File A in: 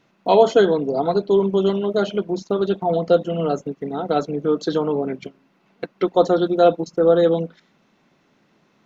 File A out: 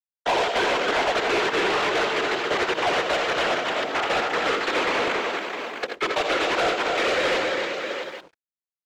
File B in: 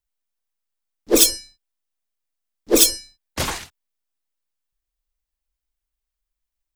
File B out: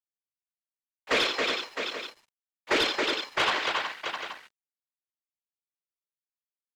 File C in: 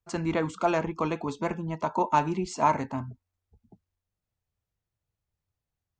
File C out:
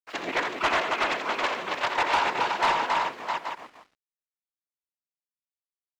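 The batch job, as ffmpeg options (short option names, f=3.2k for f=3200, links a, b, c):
-filter_complex "[0:a]aresample=11025,aresample=44100,aresample=16000,acrusher=bits=4:dc=4:mix=0:aa=0.000001,aresample=44100,acrossover=split=180 3400:gain=0.0708 1 0.178[a][b][c];[a][b][c]amix=inputs=3:normalize=0,acrossover=split=310|1400[d][e][f];[d]acompressor=threshold=-34dB:ratio=4[g];[e]acompressor=threshold=-24dB:ratio=4[h];[f]acompressor=threshold=-32dB:ratio=4[i];[g][h][i]amix=inputs=3:normalize=0,bandreject=f=60:t=h:w=6,bandreject=f=120:t=h:w=6,bandreject=f=180:t=h:w=6,bandreject=f=240:t=h:w=6,bandreject=f=300:t=h:w=6,bandreject=f=360:t=h:w=6,bandreject=f=420:t=h:w=6,bandreject=f=480:t=h:w=6,afftfilt=real='hypot(re,im)*cos(2*PI*random(0))':imag='hypot(re,im)*sin(2*PI*random(1))':win_size=512:overlap=0.75,tiltshelf=f=1.1k:g=-4.5,aecho=1:1:64|83|273|370|660|827:0.188|0.355|0.531|0.316|0.299|0.168,asplit=2[j][k];[k]highpass=f=720:p=1,volume=24dB,asoftclip=type=tanh:threshold=-9.5dB[l];[j][l]amix=inputs=2:normalize=0,lowpass=f=3.3k:p=1,volume=-6dB,acontrast=37,aeval=exprs='sgn(val(0))*max(abs(val(0))-0.00355,0)':c=same,volume=-7.5dB"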